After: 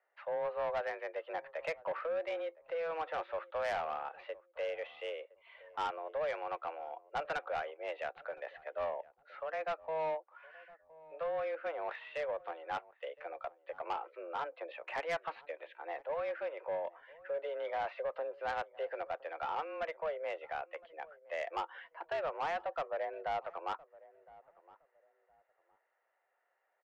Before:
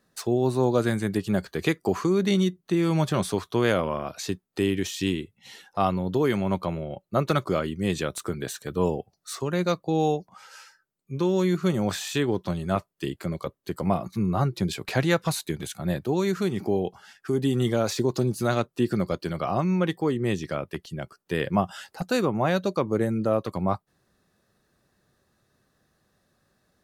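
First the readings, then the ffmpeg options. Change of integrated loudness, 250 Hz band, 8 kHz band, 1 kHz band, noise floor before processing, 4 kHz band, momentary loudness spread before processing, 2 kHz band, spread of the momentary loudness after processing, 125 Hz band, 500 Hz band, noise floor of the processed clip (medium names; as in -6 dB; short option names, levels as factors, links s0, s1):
-13.0 dB, -33.5 dB, under -25 dB, -7.0 dB, -75 dBFS, -16.5 dB, 9 LU, -8.5 dB, 10 LU, -37.5 dB, -11.0 dB, -79 dBFS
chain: -filter_complex "[0:a]highpass=f=360:t=q:w=0.5412,highpass=f=360:t=q:w=1.307,lowpass=f=2500:t=q:w=0.5176,lowpass=f=2500:t=q:w=0.7071,lowpass=f=2500:t=q:w=1.932,afreqshift=160,asoftclip=type=tanh:threshold=0.0708,asplit=2[s0][s1];[s1]adelay=1014,lowpass=f=880:p=1,volume=0.112,asplit=2[s2][s3];[s3]adelay=1014,lowpass=f=880:p=1,volume=0.28[s4];[s0][s2][s4]amix=inputs=3:normalize=0,volume=0.447"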